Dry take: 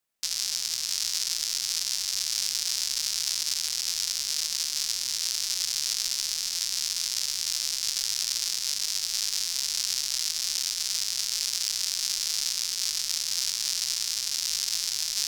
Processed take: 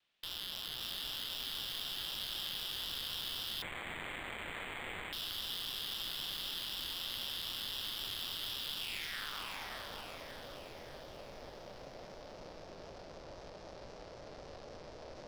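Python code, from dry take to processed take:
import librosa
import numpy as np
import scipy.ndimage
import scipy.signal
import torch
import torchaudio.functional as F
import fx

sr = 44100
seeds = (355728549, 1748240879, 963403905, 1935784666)

y = fx.vibrato(x, sr, rate_hz=3.9, depth_cents=86.0)
y = fx.filter_sweep_lowpass(y, sr, from_hz=3300.0, to_hz=570.0, start_s=8.77, end_s=9.85, q=2.9)
y = 10.0 ** (-37.5 / 20.0) * np.tanh(y / 10.0 ** (-37.5 / 20.0))
y = fx.echo_split(y, sr, split_hz=1500.0, low_ms=382, high_ms=579, feedback_pct=52, wet_db=-4.0)
y = fx.resample_linear(y, sr, factor=8, at=(3.62, 5.13))
y = F.gain(torch.from_numpy(y), 3.0).numpy()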